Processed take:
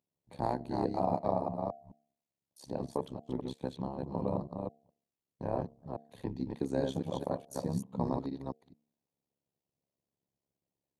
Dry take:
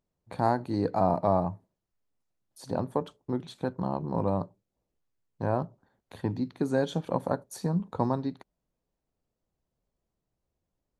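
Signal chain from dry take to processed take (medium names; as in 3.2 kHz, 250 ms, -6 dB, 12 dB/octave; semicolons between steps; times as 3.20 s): chunks repeated in reverse 213 ms, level -3.5 dB; high-pass 110 Hz 24 dB/octave; peaking EQ 1.4 kHz -11 dB 0.51 oct; de-hum 229.7 Hz, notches 3; AM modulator 69 Hz, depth 75%; trim -2.5 dB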